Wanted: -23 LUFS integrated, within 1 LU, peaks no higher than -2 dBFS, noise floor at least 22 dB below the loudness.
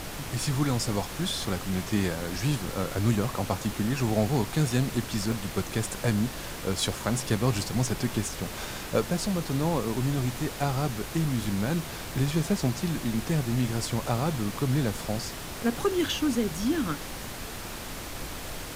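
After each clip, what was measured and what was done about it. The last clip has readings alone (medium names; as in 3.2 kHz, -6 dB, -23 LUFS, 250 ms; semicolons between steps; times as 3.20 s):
dropouts 4; longest dropout 1.9 ms; noise floor -38 dBFS; noise floor target -51 dBFS; loudness -29.0 LUFS; peak level -10.5 dBFS; loudness target -23.0 LUFS
-> interpolate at 2.95/5.32/12.17/13.88 s, 1.9 ms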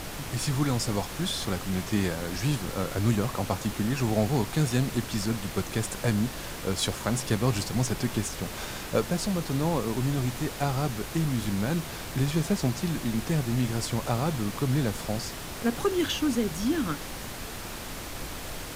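dropouts 0; noise floor -38 dBFS; noise floor target -51 dBFS
-> noise print and reduce 13 dB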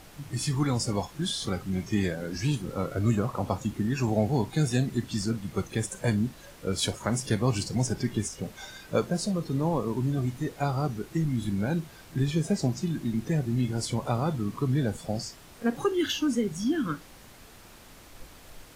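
noise floor -51 dBFS; loudness -29.0 LUFS; peak level -11.0 dBFS; loudness target -23.0 LUFS
-> trim +6 dB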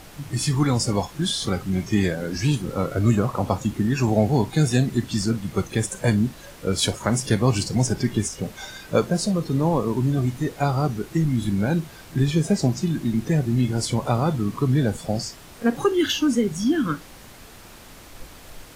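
loudness -23.0 LUFS; peak level -5.0 dBFS; noise floor -45 dBFS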